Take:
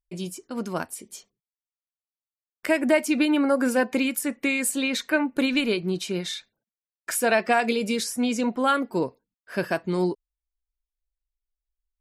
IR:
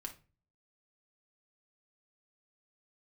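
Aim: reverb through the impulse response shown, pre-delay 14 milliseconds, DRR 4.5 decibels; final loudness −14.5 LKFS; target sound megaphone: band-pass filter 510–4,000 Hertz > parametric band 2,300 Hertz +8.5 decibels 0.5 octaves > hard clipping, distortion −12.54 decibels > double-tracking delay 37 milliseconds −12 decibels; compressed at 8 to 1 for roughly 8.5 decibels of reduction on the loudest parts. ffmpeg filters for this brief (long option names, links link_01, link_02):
-filter_complex "[0:a]acompressor=threshold=-25dB:ratio=8,asplit=2[link_01][link_02];[1:a]atrim=start_sample=2205,adelay=14[link_03];[link_02][link_03]afir=irnorm=-1:irlink=0,volume=-1.5dB[link_04];[link_01][link_04]amix=inputs=2:normalize=0,highpass=510,lowpass=4000,equalizer=frequency=2300:width_type=o:width=0.5:gain=8.5,asoftclip=type=hard:threshold=-23dB,asplit=2[link_05][link_06];[link_06]adelay=37,volume=-12dB[link_07];[link_05][link_07]amix=inputs=2:normalize=0,volume=16dB"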